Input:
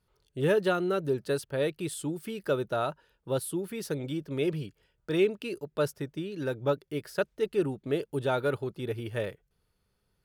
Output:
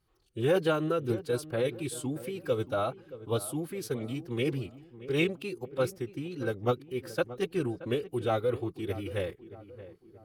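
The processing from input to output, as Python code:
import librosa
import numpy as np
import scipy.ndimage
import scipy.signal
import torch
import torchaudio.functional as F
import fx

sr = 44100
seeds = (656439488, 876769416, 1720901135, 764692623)

y = fx.pitch_keep_formants(x, sr, semitones=-2.5)
y = fx.echo_filtered(y, sr, ms=626, feedback_pct=47, hz=1500.0, wet_db=-15.0)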